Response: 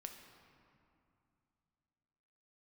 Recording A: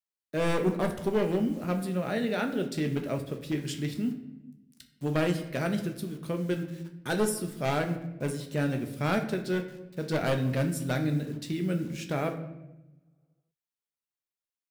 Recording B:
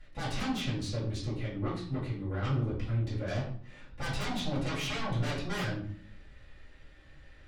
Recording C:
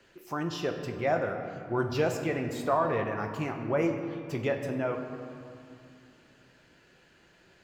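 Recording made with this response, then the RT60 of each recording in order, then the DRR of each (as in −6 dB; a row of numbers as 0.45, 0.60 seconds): C; 0.95, 0.55, 2.6 seconds; 4.5, −11.0, 4.0 decibels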